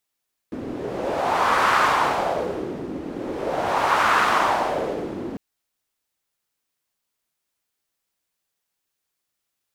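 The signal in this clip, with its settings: wind-like swept noise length 4.85 s, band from 300 Hz, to 1200 Hz, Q 2.4, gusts 2, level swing 13 dB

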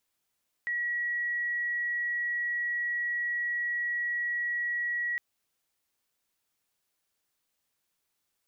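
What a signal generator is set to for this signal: tone sine 1920 Hz -28 dBFS 4.51 s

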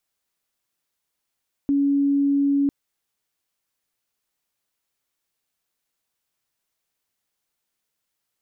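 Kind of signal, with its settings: tone sine 281 Hz -16.5 dBFS 1.00 s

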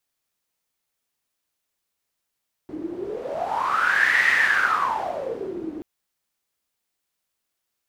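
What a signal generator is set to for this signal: wind-like swept noise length 3.13 s, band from 310 Hz, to 1900 Hz, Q 12, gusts 1, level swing 14.5 dB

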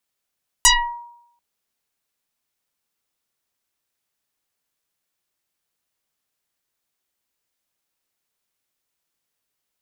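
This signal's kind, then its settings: FM tone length 0.74 s, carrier 950 Hz, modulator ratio 1.02, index 11, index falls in 0.40 s exponential, decay 0.76 s, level -7 dB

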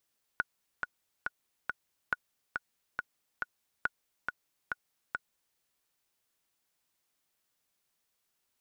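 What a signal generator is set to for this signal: metronome 139 bpm, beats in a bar 4, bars 3, 1460 Hz, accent 4.5 dB -15 dBFS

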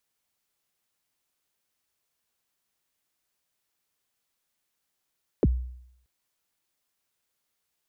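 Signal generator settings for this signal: kick drum length 0.63 s, from 530 Hz, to 62 Hz, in 36 ms, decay 0.72 s, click off, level -15 dB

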